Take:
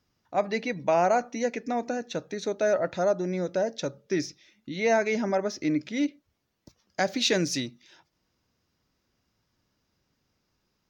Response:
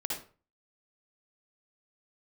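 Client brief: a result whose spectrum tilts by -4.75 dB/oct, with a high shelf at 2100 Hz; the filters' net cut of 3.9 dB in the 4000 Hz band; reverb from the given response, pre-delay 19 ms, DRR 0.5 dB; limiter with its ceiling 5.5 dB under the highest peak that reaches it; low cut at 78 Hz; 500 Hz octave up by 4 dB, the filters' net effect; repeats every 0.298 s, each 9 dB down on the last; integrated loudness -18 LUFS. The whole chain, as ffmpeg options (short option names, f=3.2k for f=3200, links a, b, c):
-filter_complex "[0:a]highpass=78,equalizer=f=500:t=o:g=5,highshelf=f=2.1k:g=4,equalizer=f=4k:t=o:g=-8.5,alimiter=limit=-15dB:level=0:latency=1,aecho=1:1:298|596|894|1192:0.355|0.124|0.0435|0.0152,asplit=2[a][b];[1:a]atrim=start_sample=2205,adelay=19[c];[b][c]afir=irnorm=-1:irlink=0,volume=-4.5dB[d];[a][d]amix=inputs=2:normalize=0,volume=5.5dB"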